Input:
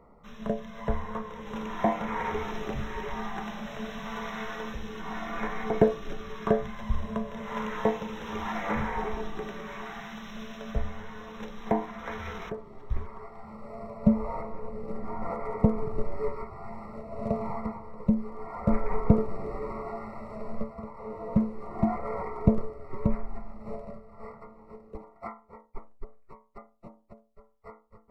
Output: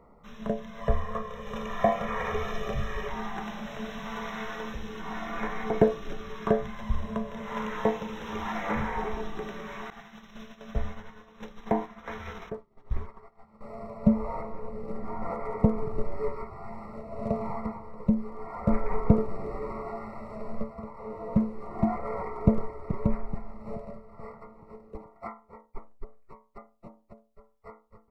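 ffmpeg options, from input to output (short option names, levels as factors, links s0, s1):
-filter_complex "[0:a]asettb=1/sr,asplit=3[s0][s1][s2];[s0]atrim=end=0.814[s3];[s1]atrim=start=0.81:end=3.08,asetpts=PTS-STARTPTS,afade=t=in:d=0.004:c=qsin,afade=t=out:st=2.266:d=0.004:c=qsin,aecho=1:1:1.7:0.75,atrim=end_sample=100107[s4];[s2]atrim=start=3.076[s5];[s3][s4]acrossfade=d=0.004:c1=hsin:c2=qsin[s6];[s6][s5]acrossfade=d=0.004:c1=qsin:c2=hsin,asettb=1/sr,asplit=3[s7][s8][s9];[s7]atrim=end=9.904[s10];[s8]atrim=start=9.9:end=13.61,asetpts=PTS-STARTPTS,afade=t=in:d=0.004:c=qsin,afade=t=out:st=3.706:d=0.004:c=qsin,agate=range=0.0224:threshold=0.0178:ratio=3:release=100:detection=peak[s11];[s9]atrim=start=13.606[s12];[s10][s11]acrossfade=d=0.004:c1=hsin:c2=qsin[s13];[s13][s12]acrossfade=d=0.004:c1=qsin:c2=hsin,asplit=2[s14][s15];[s15]afade=t=in:st=21.99:d=0.01,afade=t=out:st=22.48:d=0.01,aecho=0:1:430|860|1290|1720|2150|2580:0.334965|0.167483|0.0837414|0.0418707|0.0209353|0.0104677[s16];[s14][s16]amix=inputs=2:normalize=0"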